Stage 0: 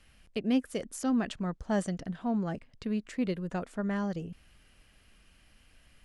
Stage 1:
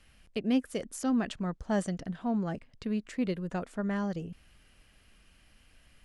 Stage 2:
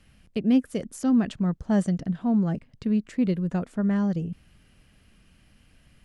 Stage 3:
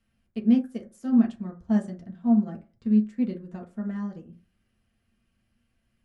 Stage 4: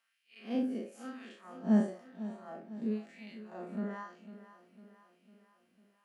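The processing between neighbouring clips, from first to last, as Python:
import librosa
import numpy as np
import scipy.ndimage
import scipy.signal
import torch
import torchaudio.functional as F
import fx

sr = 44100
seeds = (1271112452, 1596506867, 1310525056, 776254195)

y1 = x
y2 = fx.peak_eq(y1, sr, hz=150.0, db=10.0, octaves=2.3)
y3 = fx.rev_fdn(y2, sr, rt60_s=0.4, lf_ratio=0.9, hf_ratio=0.4, size_ms=26.0, drr_db=0.0)
y3 = fx.upward_expand(y3, sr, threshold_db=-32.0, expansion=1.5)
y3 = y3 * 10.0 ** (-5.5 / 20.0)
y4 = fx.spec_blur(y3, sr, span_ms=111.0)
y4 = fx.filter_lfo_highpass(y4, sr, shape='sine', hz=1.0, low_hz=270.0, high_hz=2500.0, q=1.5)
y4 = fx.echo_feedback(y4, sr, ms=501, feedback_pct=53, wet_db=-14.5)
y4 = y4 * 10.0 ** (1.5 / 20.0)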